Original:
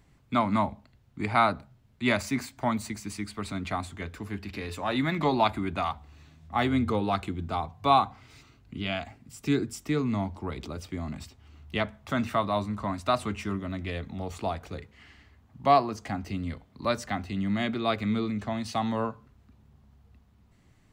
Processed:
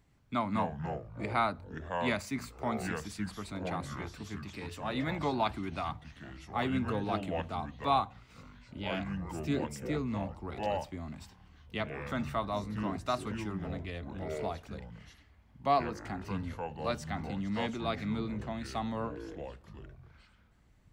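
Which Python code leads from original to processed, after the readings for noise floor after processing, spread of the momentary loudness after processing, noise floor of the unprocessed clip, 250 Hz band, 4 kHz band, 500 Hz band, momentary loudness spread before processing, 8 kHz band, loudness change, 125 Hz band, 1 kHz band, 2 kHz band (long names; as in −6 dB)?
−63 dBFS, 13 LU, −61 dBFS, −6.0 dB, −6.5 dB, −5.0 dB, 13 LU, −6.5 dB, −6.0 dB, −4.5 dB, −6.5 dB, −6.0 dB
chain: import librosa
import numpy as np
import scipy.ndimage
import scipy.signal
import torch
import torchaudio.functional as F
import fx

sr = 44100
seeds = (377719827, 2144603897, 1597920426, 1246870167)

y = fx.echo_pitch(x, sr, ms=107, semitones=-5, count=3, db_per_echo=-6.0)
y = y * 10.0 ** (-7.0 / 20.0)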